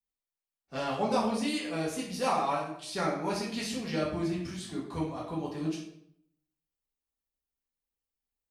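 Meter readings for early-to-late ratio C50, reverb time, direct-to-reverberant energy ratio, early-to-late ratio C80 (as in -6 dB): 4.0 dB, 0.70 s, -6.0 dB, 7.5 dB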